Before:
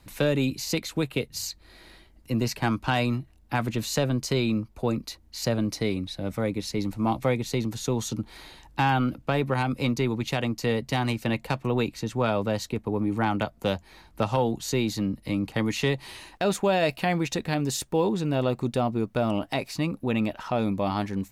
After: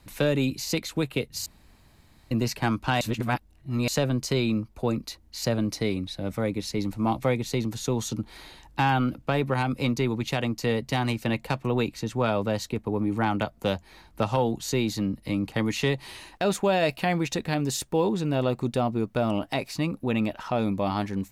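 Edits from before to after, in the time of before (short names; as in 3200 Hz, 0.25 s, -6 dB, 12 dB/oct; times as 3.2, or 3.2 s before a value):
1.46–2.31 room tone
3.01–3.88 reverse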